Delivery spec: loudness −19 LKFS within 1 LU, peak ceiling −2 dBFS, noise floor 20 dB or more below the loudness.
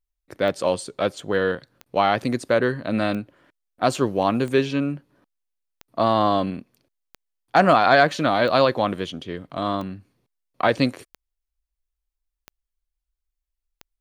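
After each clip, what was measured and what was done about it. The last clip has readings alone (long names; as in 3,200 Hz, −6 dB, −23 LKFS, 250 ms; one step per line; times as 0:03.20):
number of clicks 11; integrated loudness −22.0 LKFS; sample peak −4.0 dBFS; target loudness −19.0 LKFS
→ click removal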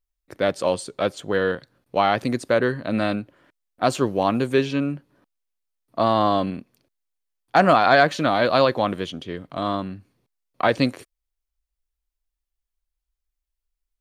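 number of clicks 0; integrated loudness −22.0 LKFS; sample peak −4.0 dBFS; target loudness −19.0 LKFS
→ level +3 dB
brickwall limiter −2 dBFS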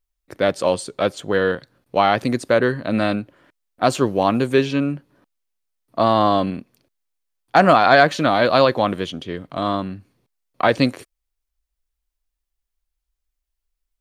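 integrated loudness −19.0 LKFS; sample peak −2.0 dBFS; background noise floor −81 dBFS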